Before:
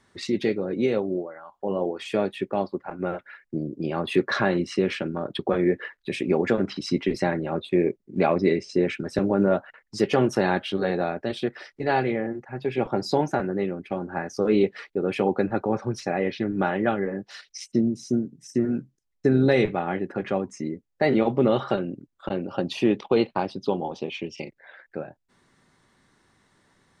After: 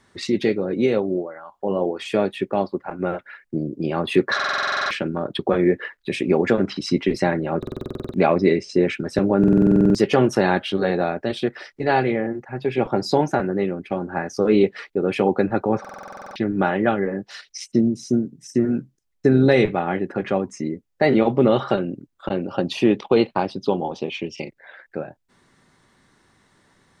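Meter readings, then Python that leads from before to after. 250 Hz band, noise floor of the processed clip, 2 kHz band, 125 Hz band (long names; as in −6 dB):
+4.5 dB, −67 dBFS, +4.5 dB, +4.5 dB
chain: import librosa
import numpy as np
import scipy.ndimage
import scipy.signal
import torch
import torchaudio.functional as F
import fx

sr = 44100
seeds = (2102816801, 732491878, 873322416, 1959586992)

y = fx.buffer_glitch(x, sr, at_s=(4.35, 7.58, 9.39, 15.8), block=2048, repeats=11)
y = y * 10.0 ** (4.0 / 20.0)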